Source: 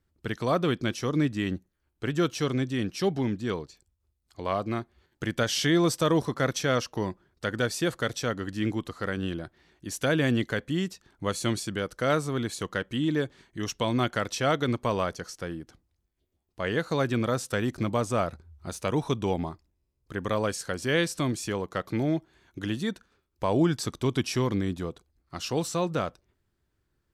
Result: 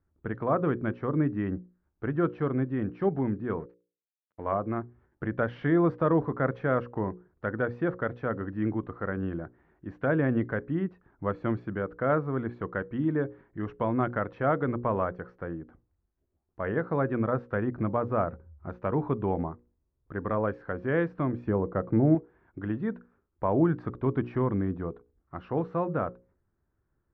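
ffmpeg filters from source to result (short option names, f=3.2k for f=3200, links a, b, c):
-filter_complex "[0:a]asettb=1/sr,asplit=3[a][b][c];[a]atrim=end=3.594[d];[b]atrim=start=3.59:end=4.47,asetpts=PTS-STARTPTS,afade=t=in:d=0.004:c=qsin,afade=t=out:st=0.876:d=0.004:c=qsin,aeval=exprs='sgn(val(0))*max(abs(val(0))-0.00299,0)':c=same[e];[c]atrim=start=4.466[f];[d][e]acrossfade=d=0.004:c1=hsin:c2=qsin[g];[g][f]acrossfade=d=0.004:c1=qsin:c2=hsin,asettb=1/sr,asplit=3[h][i][j];[h]atrim=end=21.484[k];[i]atrim=start=21.48:end=22.15,asetpts=PTS-STARTPTS,afade=t=in:d=0.004:c=qsin,afade=t=out:st=0.666:d=0.004:c=qsin,tiltshelf=f=970:g=6.5[l];[j]atrim=start=22.146[m];[k][l]acrossfade=d=0.004:c1=hsin:c2=qsin[n];[n][m]acrossfade=d=0.004:c1=qsin:c2=hsin,lowpass=f=1.6k:w=0.5412,lowpass=f=1.6k:w=1.3066,bandreject=f=60:t=h:w=6,bandreject=f=120:t=h:w=6,bandreject=f=180:t=h:w=6,bandreject=f=240:t=h:w=6,bandreject=f=300:t=h:w=6,bandreject=f=360:t=h:w=6,bandreject=f=420:t=h:w=6,bandreject=f=480:t=h:w=6,bandreject=f=540:t=h:w=6"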